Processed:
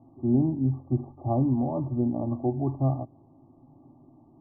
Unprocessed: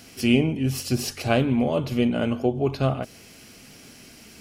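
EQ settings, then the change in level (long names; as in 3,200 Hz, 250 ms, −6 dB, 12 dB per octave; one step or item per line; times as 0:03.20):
Chebyshev low-pass with heavy ripple 1,200 Hz, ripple 6 dB
parametric band 120 Hz +5 dB 1.1 octaves
phaser with its sweep stopped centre 300 Hz, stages 8
0.0 dB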